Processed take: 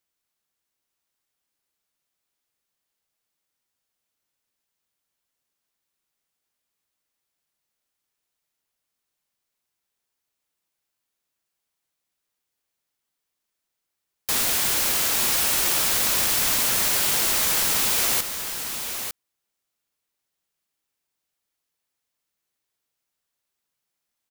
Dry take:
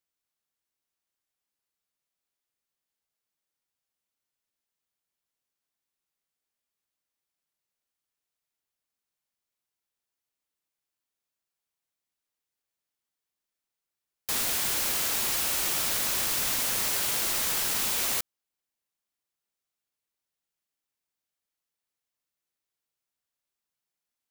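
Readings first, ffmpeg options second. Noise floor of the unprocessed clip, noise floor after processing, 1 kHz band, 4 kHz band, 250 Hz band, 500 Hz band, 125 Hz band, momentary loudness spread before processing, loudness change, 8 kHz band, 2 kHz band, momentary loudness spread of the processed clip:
under -85 dBFS, -82 dBFS, +6.0 dB, +6.0 dB, +6.0 dB, +6.0 dB, +6.0 dB, 3 LU, +5.5 dB, +6.0 dB, +6.0 dB, 9 LU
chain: -af "aecho=1:1:902:0.398,volume=1.88"

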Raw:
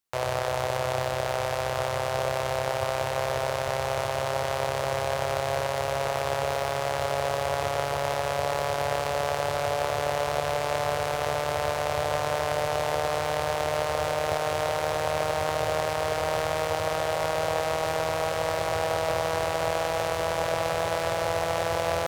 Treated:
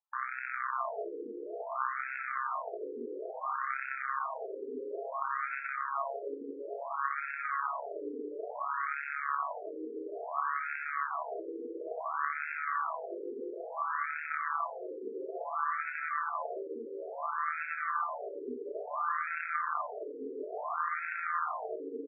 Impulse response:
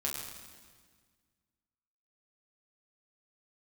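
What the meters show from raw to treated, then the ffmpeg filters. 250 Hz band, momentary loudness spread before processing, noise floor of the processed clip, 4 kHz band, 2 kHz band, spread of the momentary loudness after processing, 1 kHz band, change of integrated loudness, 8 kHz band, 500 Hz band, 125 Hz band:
-6.0 dB, 1 LU, -43 dBFS, under -40 dB, -4.5 dB, 8 LU, -6.5 dB, -8.5 dB, under -40 dB, -14.0 dB, under -40 dB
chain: -af "aecho=1:1:110|526:0.126|0.501,aeval=exprs='val(0)*sin(2*PI*550*n/s)':c=same,afftfilt=real='re*between(b*sr/1024,360*pow(1900/360,0.5+0.5*sin(2*PI*0.58*pts/sr))/1.41,360*pow(1900/360,0.5+0.5*sin(2*PI*0.58*pts/sr))*1.41)':imag='im*between(b*sr/1024,360*pow(1900/360,0.5+0.5*sin(2*PI*0.58*pts/sr))/1.41,360*pow(1900/360,0.5+0.5*sin(2*PI*0.58*pts/sr))*1.41)':win_size=1024:overlap=0.75"

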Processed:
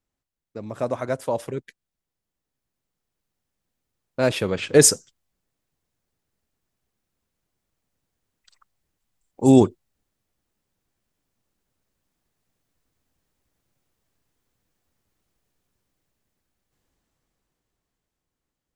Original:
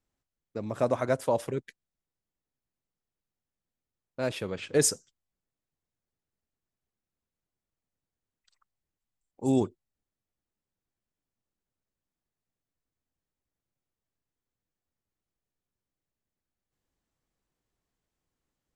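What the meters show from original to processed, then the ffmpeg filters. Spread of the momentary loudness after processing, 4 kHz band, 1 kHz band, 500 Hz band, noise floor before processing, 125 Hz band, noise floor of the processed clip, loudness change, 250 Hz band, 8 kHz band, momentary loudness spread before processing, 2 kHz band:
20 LU, +10.0 dB, +5.0 dB, +7.5 dB, under -85 dBFS, +9.0 dB, -85 dBFS, +9.5 dB, +10.5 dB, +10.0 dB, 14 LU, +8.5 dB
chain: -af "dynaudnorm=f=570:g=9:m=5.31"

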